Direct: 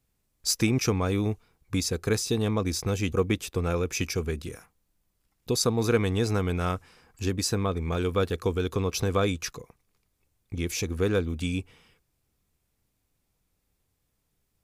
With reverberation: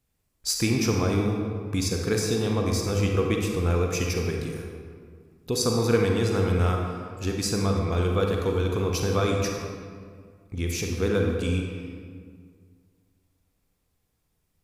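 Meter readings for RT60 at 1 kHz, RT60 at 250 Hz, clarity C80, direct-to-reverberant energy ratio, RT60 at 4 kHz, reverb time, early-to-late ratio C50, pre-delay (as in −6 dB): 1.8 s, 2.2 s, 3.5 dB, 0.5 dB, 1.2 s, 1.9 s, 1.5 dB, 35 ms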